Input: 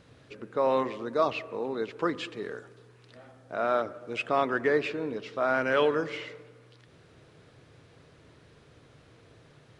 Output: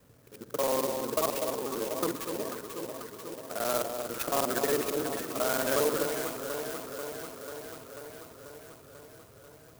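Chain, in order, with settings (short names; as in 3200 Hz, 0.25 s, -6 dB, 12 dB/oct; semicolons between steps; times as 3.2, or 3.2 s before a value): local time reversal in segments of 45 ms; on a send: echo with dull and thin repeats by turns 0.245 s, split 1100 Hz, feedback 83%, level -5 dB; on the sum: clock jitter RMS 0.1 ms; gain -3 dB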